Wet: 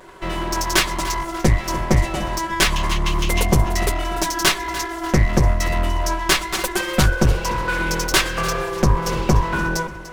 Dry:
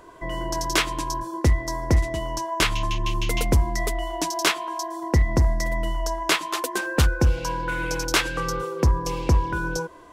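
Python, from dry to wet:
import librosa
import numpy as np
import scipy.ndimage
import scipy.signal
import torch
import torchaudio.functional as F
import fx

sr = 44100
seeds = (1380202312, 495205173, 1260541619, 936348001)

p1 = fx.lower_of_two(x, sr, delay_ms=5.3)
p2 = p1 + fx.echo_feedback(p1, sr, ms=294, feedback_pct=40, wet_db=-15.0, dry=0)
y = p2 * librosa.db_to_amplitude(6.0)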